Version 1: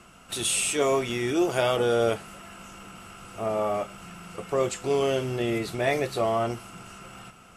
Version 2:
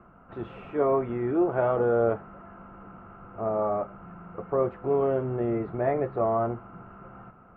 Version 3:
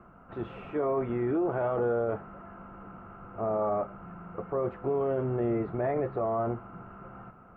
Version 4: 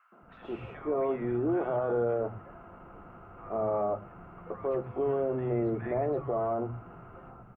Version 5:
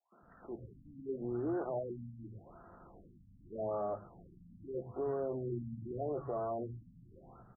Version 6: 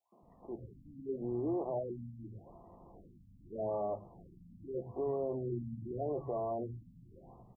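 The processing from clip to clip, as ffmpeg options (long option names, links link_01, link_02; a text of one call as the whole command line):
ffmpeg -i in.wav -af "lowpass=frequency=1400:width=0.5412,lowpass=frequency=1400:width=1.3066" out.wav
ffmpeg -i in.wav -af "alimiter=limit=-21.5dB:level=0:latency=1:release=14" out.wav
ffmpeg -i in.wav -filter_complex "[0:a]acrossover=split=180|1300[link_01][link_02][link_03];[link_02]adelay=120[link_04];[link_01]adelay=220[link_05];[link_05][link_04][link_03]amix=inputs=3:normalize=0" out.wav
ffmpeg -i in.wav -af "afftfilt=real='re*lt(b*sr/1024,270*pow(2000/270,0.5+0.5*sin(2*PI*0.83*pts/sr)))':imag='im*lt(b*sr/1024,270*pow(2000/270,0.5+0.5*sin(2*PI*0.83*pts/sr)))':win_size=1024:overlap=0.75,volume=-7dB" out.wav
ffmpeg -i in.wav -af "asuperstop=centerf=1500:order=8:qfactor=1.6,volume=1dB" out.wav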